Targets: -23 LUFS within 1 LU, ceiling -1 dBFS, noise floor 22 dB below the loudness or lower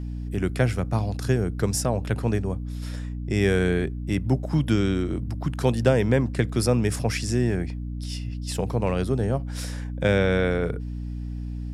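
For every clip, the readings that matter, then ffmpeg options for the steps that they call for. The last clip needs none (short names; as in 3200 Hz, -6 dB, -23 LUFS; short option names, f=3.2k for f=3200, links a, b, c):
hum 60 Hz; harmonics up to 300 Hz; hum level -29 dBFS; loudness -25.5 LUFS; peak -7.0 dBFS; loudness target -23.0 LUFS
-> -af "bandreject=f=60:t=h:w=4,bandreject=f=120:t=h:w=4,bandreject=f=180:t=h:w=4,bandreject=f=240:t=h:w=4,bandreject=f=300:t=h:w=4"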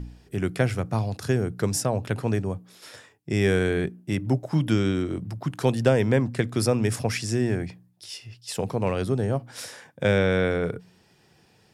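hum none; loudness -25.5 LUFS; peak -7.5 dBFS; loudness target -23.0 LUFS
-> -af "volume=2.5dB"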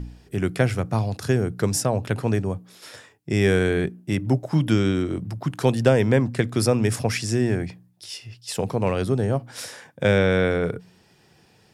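loudness -23.0 LUFS; peak -5.0 dBFS; noise floor -58 dBFS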